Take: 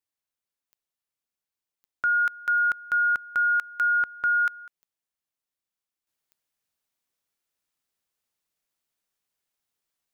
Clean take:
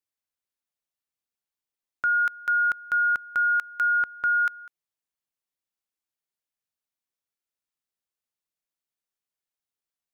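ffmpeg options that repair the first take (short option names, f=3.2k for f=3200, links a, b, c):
-af "adeclick=t=4,asetnsamples=n=441:p=0,asendcmd='6.07 volume volume -7dB',volume=0dB"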